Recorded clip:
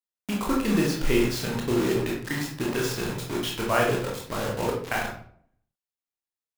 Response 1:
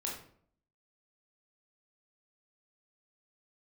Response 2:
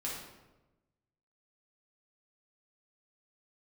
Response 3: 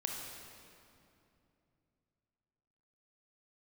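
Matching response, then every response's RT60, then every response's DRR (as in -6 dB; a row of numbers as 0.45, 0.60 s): 1; 0.60, 1.1, 2.7 s; -2.5, -5.5, 0.0 dB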